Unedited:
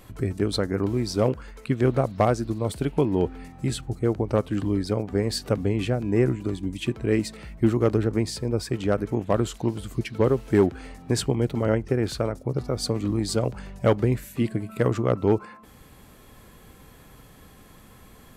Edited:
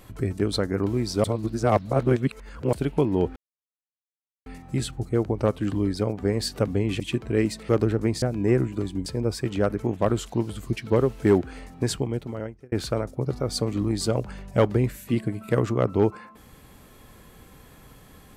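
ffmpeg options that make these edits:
-filter_complex "[0:a]asplit=9[a][b][c][d][e][f][g][h][i];[a]atrim=end=1.242[j];[b]atrim=start=1.238:end=2.732,asetpts=PTS-STARTPTS,areverse[k];[c]atrim=start=2.728:end=3.36,asetpts=PTS-STARTPTS,afade=t=out:st=0.628:d=0.004:c=hsin,apad=pad_dur=1.1[l];[d]atrim=start=3.36:end=5.902,asetpts=PTS-STARTPTS,afade=t=in:d=0.004:c=hsin[m];[e]atrim=start=6.738:end=7.432[n];[f]atrim=start=7.808:end=8.342[o];[g]atrim=start=5.898:end=6.742[p];[h]atrim=start=8.338:end=12,asetpts=PTS-STARTPTS,afade=t=out:st=2.662:d=1[q];[i]atrim=start=12,asetpts=PTS-STARTPTS,afade=t=in:d=0.004:c=hsin[r];[j][k]acrossfade=d=0.004:c1=hsin:c2=hsin[s];[l][m]concat=n=2:v=0:a=1[t];[s][t]acrossfade=d=0.004:c1=hsin:c2=hsin[u];[u][n]acrossfade=d=0.004:c1=hsin:c2=hsin[v];[v][o]acrossfade=d=0.004:c1=hsin:c2=hsin[w];[w][p]acrossfade=d=0.004:c1=hsin:c2=hsin[x];[q][r]concat=n=2:v=0:a=1[y];[x][y]acrossfade=d=0.004:c1=hsin:c2=hsin"

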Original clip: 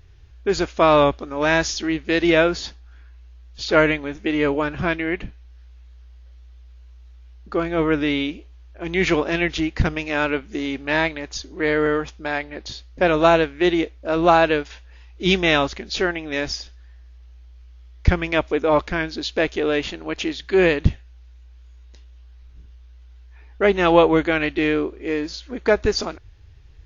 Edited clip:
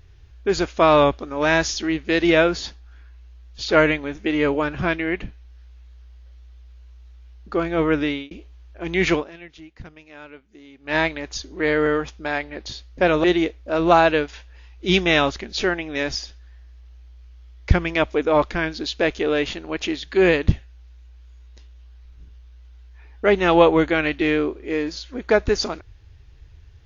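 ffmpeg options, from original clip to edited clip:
-filter_complex "[0:a]asplit=5[a][b][c][d][e];[a]atrim=end=8.31,asetpts=PTS-STARTPTS,afade=t=out:st=8.02:d=0.29[f];[b]atrim=start=8.31:end=9.34,asetpts=PTS-STARTPTS,afade=t=in:d=0.004:c=hsin,afade=t=out:st=0.83:d=0.2:c=qua:silence=0.1[g];[c]atrim=start=9.34:end=10.76,asetpts=PTS-STARTPTS,volume=-20dB[h];[d]atrim=start=10.76:end=13.242,asetpts=PTS-STARTPTS,afade=t=in:d=0.2:c=qua:silence=0.1[i];[e]atrim=start=13.608[j];[f][g][h][i]concat=n=4:v=0:a=1[k];[k][j]acrossfade=d=0.004:c1=hsin:c2=hsin"

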